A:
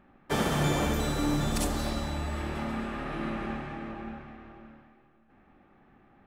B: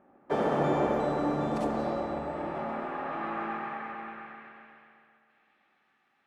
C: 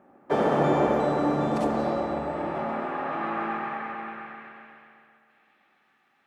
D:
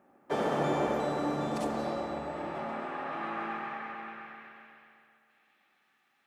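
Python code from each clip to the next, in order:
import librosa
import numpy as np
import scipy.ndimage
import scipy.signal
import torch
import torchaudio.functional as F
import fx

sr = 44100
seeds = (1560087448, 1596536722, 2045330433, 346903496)

y1 = fx.filter_sweep_bandpass(x, sr, from_hz=560.0, to_hz=5300.0, start_s=2.37, end_s=6.01, q=1.1)
y1 = fx.echo_bbd(y1, sr, ms=131, stages=2048, feedback_pct=66, wet_db=-5)
y1 = y1 * librosa.db_to_amplitude(4.0)
y2 = scipy.signal.sosfilt(scipy.signal.butter(2, 57.0, 'highpass', fs=sr, output='sos'), y1)
y2 = y2 * librosa.db_to_amplitude(4.5)
y3 = fx.high_shelf(y2, sr, hz=2800.0, db=10.0)
y3 = y3 * librosa.db_to_amplitude(-7.5)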